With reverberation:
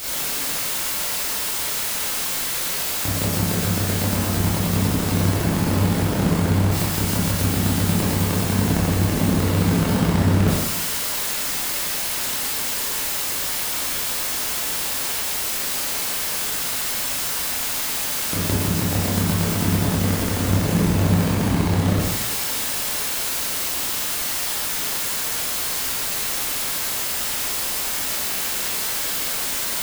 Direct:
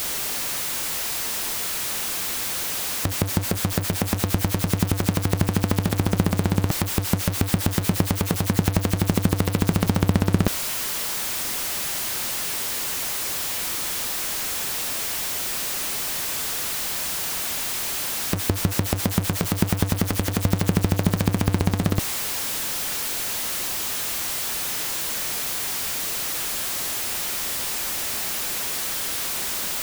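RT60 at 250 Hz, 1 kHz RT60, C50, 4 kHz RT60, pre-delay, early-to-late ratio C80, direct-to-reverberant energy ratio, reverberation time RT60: 1.1 s, 1.1 s, −1.5 dB, 1.1 s, 19 ms, 1.5 dB, −8.0 dB, 1.1 s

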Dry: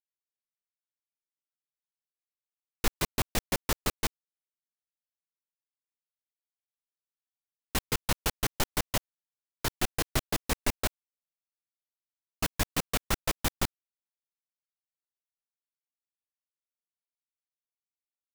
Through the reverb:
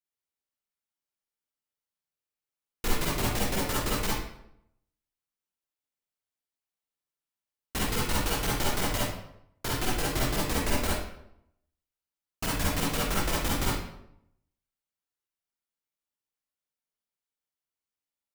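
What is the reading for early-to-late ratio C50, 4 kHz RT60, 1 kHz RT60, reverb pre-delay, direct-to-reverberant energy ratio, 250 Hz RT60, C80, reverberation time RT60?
−2.5 dB, 0.55 s, 0.75 s, 37 ms, −6.0 dB, 0.80 s, 3.0 dB, 0.75 s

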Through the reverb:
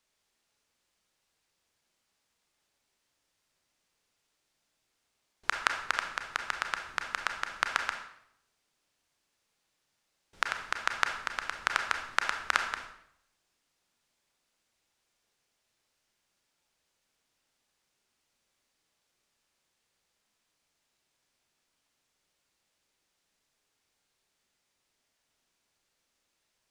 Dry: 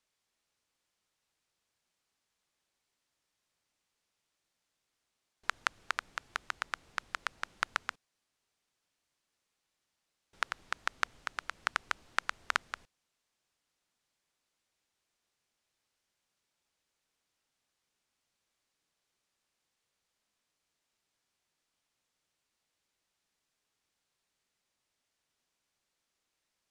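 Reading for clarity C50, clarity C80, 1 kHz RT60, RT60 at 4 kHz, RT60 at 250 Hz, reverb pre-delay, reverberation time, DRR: 6.5 dB, 9.5 dB, 0.70 s, 0.60 s, 0.80 s, 28 ms, 0.75 s, 4.0 dB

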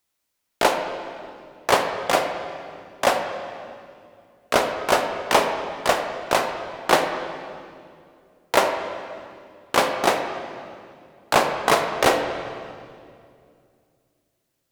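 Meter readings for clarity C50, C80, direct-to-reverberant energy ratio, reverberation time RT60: 6.0 dB, 7.0 dB, 4.5 dB, 2.3 s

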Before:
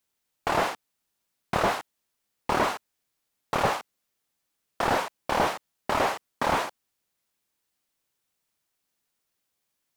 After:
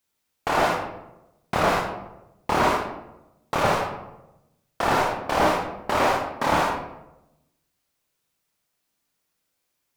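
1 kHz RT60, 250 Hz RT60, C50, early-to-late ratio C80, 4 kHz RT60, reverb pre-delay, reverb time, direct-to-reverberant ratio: 0.85 s, 1.1 s, 3.0 dB, 6.5 dB, 0.50 s, 25 ms, 0.95 s, −0.5 dB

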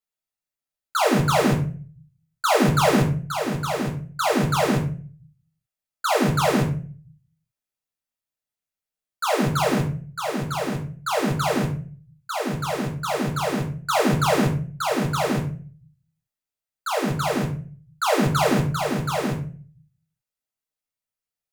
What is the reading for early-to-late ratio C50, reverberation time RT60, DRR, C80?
9.0 dB, 0.40 s, −1.0 dB, 14.0 dB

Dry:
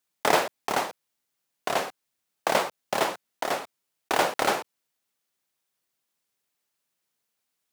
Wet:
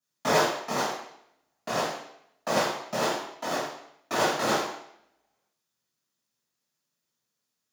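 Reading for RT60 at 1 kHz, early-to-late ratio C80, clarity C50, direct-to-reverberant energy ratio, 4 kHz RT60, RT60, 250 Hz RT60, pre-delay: 0.70 s, 6.0 dB, 2.5 dB, −11.5 dB, 0.70 s, 0.75 s, 0.70 s, 3 ms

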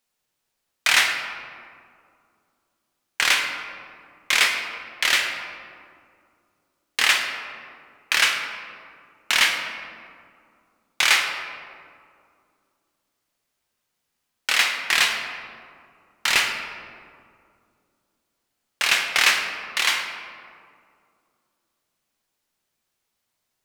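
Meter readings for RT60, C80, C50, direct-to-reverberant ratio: 2.3 s, 6.0 dB, 5.0 dB, 2.5 dB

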